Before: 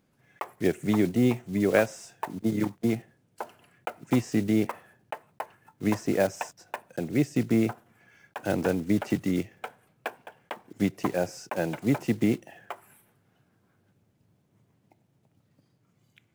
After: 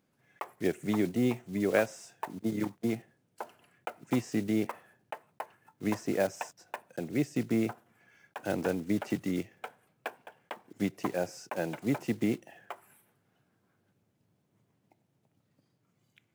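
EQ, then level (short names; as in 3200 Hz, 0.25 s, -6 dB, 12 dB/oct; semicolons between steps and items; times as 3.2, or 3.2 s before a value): low shelf 96 Hz -8.5 dB; -4.0 dB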